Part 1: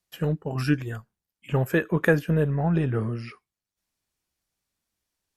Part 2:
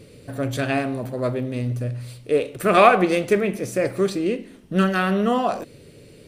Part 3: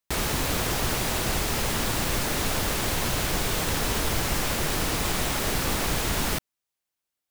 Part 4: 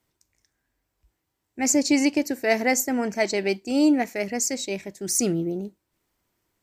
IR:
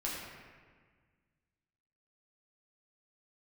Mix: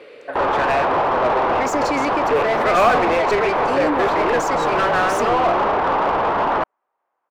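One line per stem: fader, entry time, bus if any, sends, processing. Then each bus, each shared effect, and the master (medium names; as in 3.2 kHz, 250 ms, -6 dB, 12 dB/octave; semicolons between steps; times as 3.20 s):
-5.0 dB, 2.25 s, no bus, no send, small samples zeroed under -27.5 dBFS
+1.0 dB, 0.00 s, no bus, no send, three-band isolator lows -14 dB, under 380 Hz, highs -13 dB, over 3.9 kHz
+2.5 dB, 0.25 s, bus A, no send, resonant low-pass 990 Hz, resonance Q 1.8
-2.0 dB, 0.00 s, bus A, no send, none
bus A: 0.0 dB, level rider gain up to 5 dB; peak limiter -14 dBFS, peak gain reduction 10 dB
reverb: none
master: tone controls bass -12 dB, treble -5 dB; overdrive pedal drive 22 dB, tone 1.4 kHz, clips at -9 dBFS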